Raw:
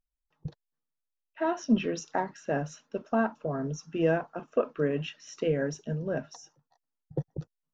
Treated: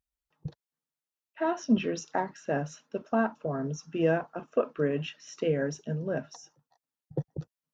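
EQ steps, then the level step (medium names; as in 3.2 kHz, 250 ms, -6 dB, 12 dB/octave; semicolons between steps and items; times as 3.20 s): high-pass 43 Hz; 0.0 dB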